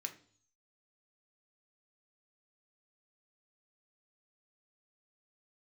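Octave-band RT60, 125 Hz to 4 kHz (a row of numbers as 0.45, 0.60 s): 0.80, 0.60, 0.50, 0.50, 0.45, 0.70 s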